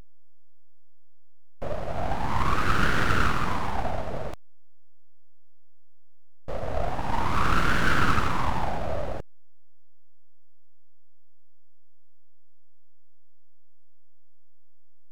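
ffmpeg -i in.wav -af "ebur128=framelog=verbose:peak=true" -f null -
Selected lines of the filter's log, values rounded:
Integrated loudness:
  I:         -27.5 LUFS
  Threshold: -38.1 LUFS
Loudness range:
  LRA:        10.6 LU
  Threshold: -49.8 LUFS
  LRA low:   -38.1 LUFS
  LRA high:  -27.5 LUFS
True peak:
  Peak:       -8.5 dBFS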